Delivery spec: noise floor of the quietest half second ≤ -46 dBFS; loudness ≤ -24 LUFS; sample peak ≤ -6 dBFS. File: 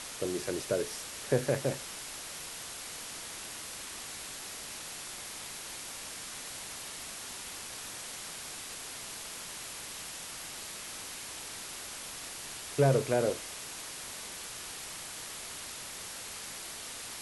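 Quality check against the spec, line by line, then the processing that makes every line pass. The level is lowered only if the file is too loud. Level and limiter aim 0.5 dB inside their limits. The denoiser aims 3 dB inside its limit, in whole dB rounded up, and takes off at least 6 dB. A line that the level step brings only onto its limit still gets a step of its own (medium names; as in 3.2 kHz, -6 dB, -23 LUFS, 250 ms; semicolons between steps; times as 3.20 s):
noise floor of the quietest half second -43 dBFS: fail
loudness -37.0 LUFS: pass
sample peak -13.0 dBFS: pass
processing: noise reduction 6 dB, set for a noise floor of -43 dBFS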